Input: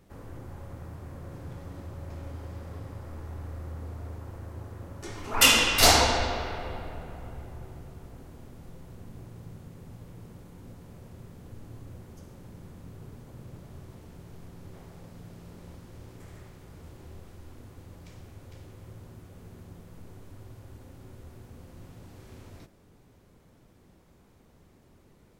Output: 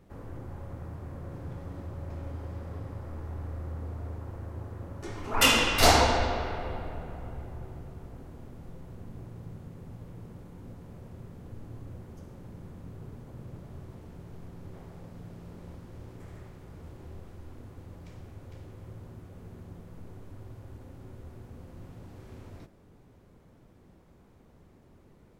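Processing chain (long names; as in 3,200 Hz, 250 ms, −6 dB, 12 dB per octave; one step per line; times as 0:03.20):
high-shelf EQ 2,500 Hz −8 dB
level +1.5 dB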